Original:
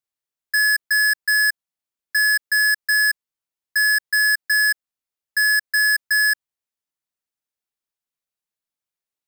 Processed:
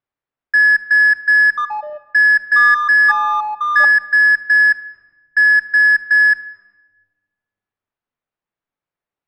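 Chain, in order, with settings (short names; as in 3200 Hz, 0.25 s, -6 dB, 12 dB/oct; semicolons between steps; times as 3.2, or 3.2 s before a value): LPF 1800 Hz 12 dB/oct; 1.45–3.85 echoes that change speed 0.125 s, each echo -6 st, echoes 3, each echo -6 dB; shoebox room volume 950 m³, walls mixed, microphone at 0.31 m; gain +9 dB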